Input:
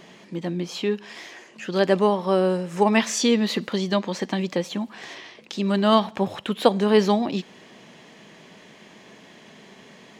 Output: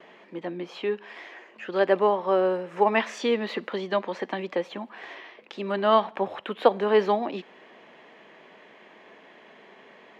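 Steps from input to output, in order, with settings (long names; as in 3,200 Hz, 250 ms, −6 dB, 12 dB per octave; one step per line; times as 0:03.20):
three-way crossover with the lows and the highs turned down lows −18 dB, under 310 Hz, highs −21 dB, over 2,900 Hz
noise gate with hold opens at −48 dBFS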